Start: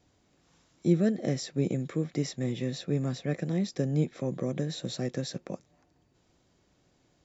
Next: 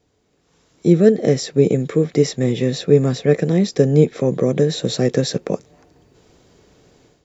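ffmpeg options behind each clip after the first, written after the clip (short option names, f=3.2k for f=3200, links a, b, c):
-af "equalizer=f=440:t=o:w=0.26:g=10.5,dynaudnorm=f=470:g=3:m=13.5dB,volume=1dB"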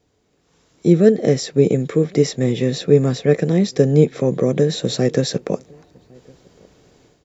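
-filter_complex "[0:a]asplit=2[a][b];[b]adelay=1108,volume=-28dB,highshelf=f=4k:g=-24.9[c];[a][c]amix=inputs=2:normalize=0"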